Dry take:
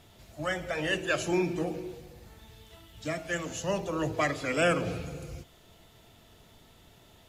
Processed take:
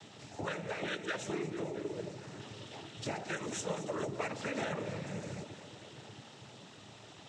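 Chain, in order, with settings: compressor 6:1, threshold -41 dBFS, peak gain reduction 18.5 dB; on a send: echo with dull and thin repeats by turns 0.111 s, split 810 Hz, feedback 85%, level -12.5 dB; on the sum: noise vocoder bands 12; gain +5.5 dB

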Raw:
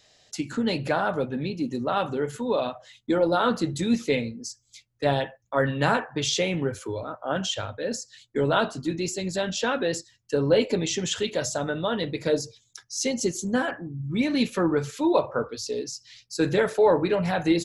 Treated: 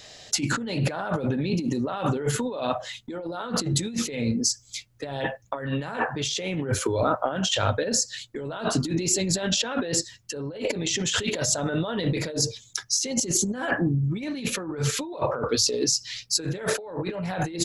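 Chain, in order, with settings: negative-ratio compressor -34 dBFS, ratio -1; gain +6 dB

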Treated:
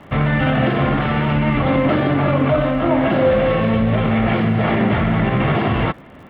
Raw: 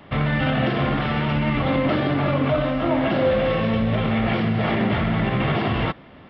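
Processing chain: LPF 2800 Hz 12 dB/oct; crackle 81/s -48 dBFS; gain +4.5 dB

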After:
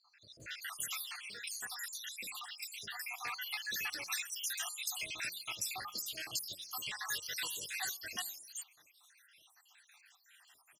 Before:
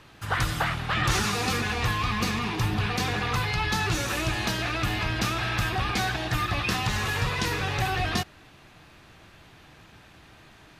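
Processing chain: random spectral dropouts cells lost 78%; differentiator; de-hum 88.04 Hz, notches 14; 0.6–3.03 compressor 6:1, threshold -44 dBFS, peak gain reduction 10 dB; short-mantissa float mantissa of 4-bit; bands offset in time lows, highs 0.4 s, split 4400 Hz; gain +5.5 dB

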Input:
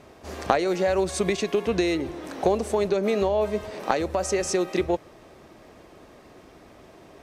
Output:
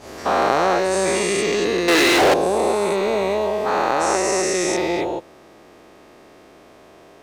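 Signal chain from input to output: spectral dilation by 0.48 s; 1.88–2.34 overdrive pedal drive 36 dB, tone 5000 Hz, clips at -5 dBFS; low shelf 160 Hz -9 dB; gain -2.5 dB

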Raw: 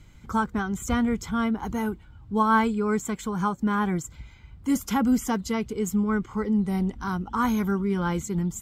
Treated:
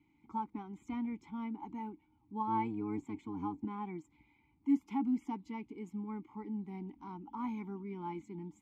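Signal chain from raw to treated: 2.47–3.65 octaver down 1 oct, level +3 dB; vowel filter u; notch 510 Hz, Q 12; gain -2 dB

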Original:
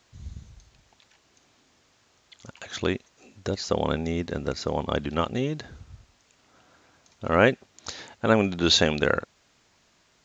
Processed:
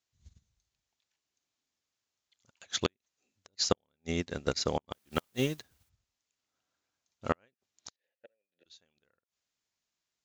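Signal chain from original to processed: high shelf 2500 Hz +10.5 dB; flipped gate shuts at -12 dBFS, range -25 dB; 4.93–5.88 added noise white -46 dBFS; 7.96–8.66 vowel filter e; upward expander 2.5:1, over -43 dBFS

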